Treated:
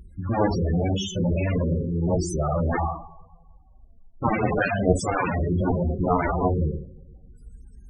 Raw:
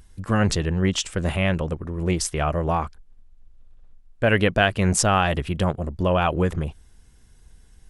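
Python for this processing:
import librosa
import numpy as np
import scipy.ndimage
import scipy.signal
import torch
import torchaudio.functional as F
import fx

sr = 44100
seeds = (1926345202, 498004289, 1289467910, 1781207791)

y = fx.rev_double_slope(x, sr, seeds[0], early_s=0.6, late_s=2.1, knee_db=-28, drr_db=-2.5)
y = fx.cheby_harmonics(y, sr, harmonics=(2, 5, 7), levels_db=(-45, -29, -8), full_scale_db=-0.5)
y = fx.spec_topn(y, sr, count=16)
y = y * 10.0 ** (-2.5 / 20.0)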